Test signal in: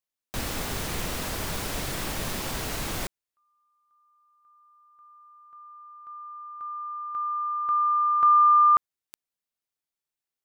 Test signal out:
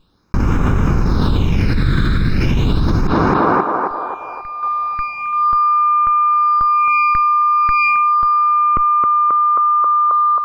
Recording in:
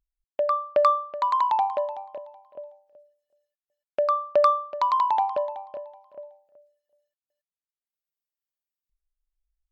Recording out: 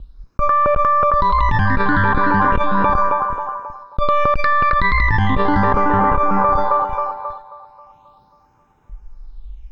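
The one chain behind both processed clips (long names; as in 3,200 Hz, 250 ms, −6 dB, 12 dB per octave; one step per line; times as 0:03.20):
lower of the sound and its delayed copy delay 0.77 ms
all-pass phaser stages 8, 0.37 Hz, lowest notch 800–4,200 Hz
low-shelf EQ 300 Hz +6 dB
feedback echo with a band-pass in the loop 268 ms, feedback 58%, band-pass 820 Hz, level −10 dB
noise gate with hold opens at −59 dBFS, hold 257 ms, range −6 dB
high-frequency loss of the air 260 metres
notch filter 2,600 Hz, Q 12
boost into a limiter +16 dB
envelope flattener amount 100%
level −9 dB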